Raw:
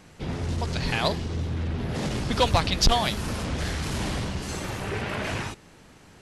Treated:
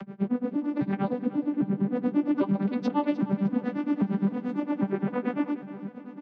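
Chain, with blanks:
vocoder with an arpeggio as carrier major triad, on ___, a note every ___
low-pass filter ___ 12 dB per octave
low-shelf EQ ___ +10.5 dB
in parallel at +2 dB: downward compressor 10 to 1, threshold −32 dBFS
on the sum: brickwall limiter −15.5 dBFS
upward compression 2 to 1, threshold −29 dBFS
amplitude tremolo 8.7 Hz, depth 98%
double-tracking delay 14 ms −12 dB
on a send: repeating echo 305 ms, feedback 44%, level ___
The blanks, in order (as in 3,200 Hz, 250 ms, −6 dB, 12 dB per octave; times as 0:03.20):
G3, 267 ms, 1,800 Hz, 240 Hz, −14.5 dB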